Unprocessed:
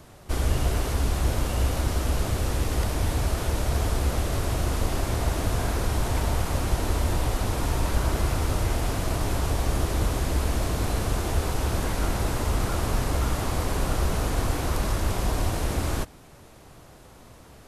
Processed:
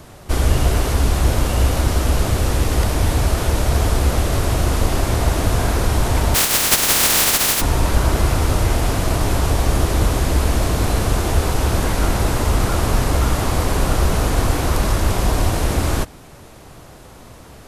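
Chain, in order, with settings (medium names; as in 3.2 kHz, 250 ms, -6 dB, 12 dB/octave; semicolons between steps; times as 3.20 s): 6.34–7.60 s: spectral contrast reduction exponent 0.1; trim +8 dB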